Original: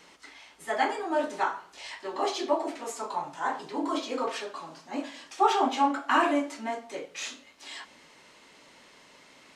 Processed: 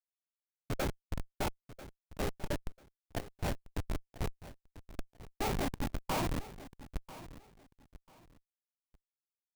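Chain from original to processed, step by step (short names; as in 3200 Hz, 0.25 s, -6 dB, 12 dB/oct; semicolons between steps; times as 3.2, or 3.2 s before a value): tone controls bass +10 dB, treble -7 dB; harmonic-percussive split harmonic -11 dB; Schmitt trigger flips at -27.5 dBFS; formant shift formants -5 st; on a send: feedback echo 0.992 s, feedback 24%, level -16 dB; on the sum: gain +4 dB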